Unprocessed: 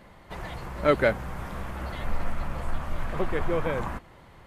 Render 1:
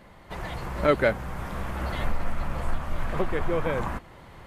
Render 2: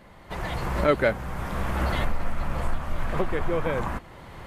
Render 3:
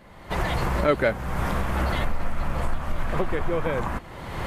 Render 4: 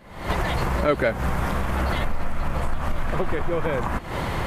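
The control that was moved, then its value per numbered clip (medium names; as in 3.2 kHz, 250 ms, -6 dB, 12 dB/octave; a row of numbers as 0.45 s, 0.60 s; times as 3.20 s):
recorder AGC, rising by: 5.3 dB/s, 13 dB/s, 33 dB/s, 85 dB/s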